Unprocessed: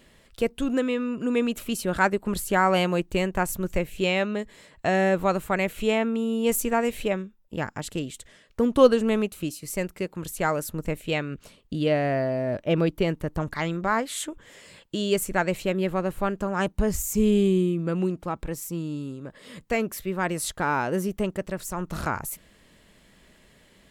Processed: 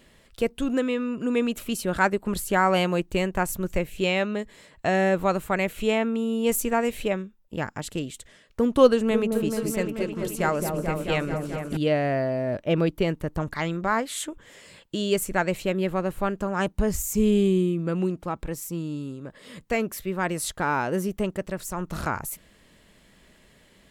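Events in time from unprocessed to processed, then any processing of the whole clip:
8.89–11.77 s: delay with an opening low-pass 217 ms, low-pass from 750 Hz, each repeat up 1 oct, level -3 dB

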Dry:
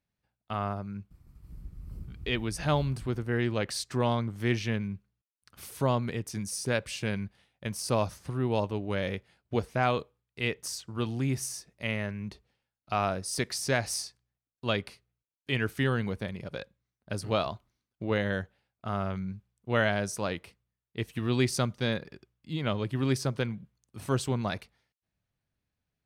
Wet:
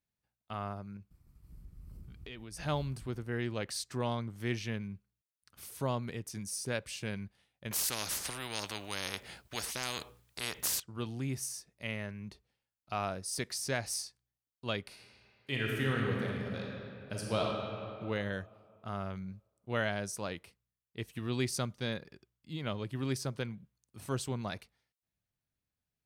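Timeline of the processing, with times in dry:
0.96–2.57 s: compression, threshold -36 dBFS
7.71–10.80 s: spectrum-flattening compressor 4:1
14.82–17.41 s: reverb throw, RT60 2.7 s, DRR -2 dB
whole clip: treble shelf 5 kHz +5.5 dB; trim -7 dB

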